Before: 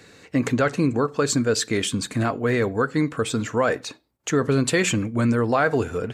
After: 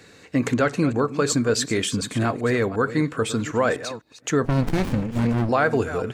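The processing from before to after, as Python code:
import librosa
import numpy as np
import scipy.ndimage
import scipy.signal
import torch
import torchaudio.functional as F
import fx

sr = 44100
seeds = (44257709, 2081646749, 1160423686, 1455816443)

y = fx.reverse_delay(x, sr, ms=251, wet_db=-13.0)
y = fx.running_max(y, sr, window=65, at=(4.45, 5.49))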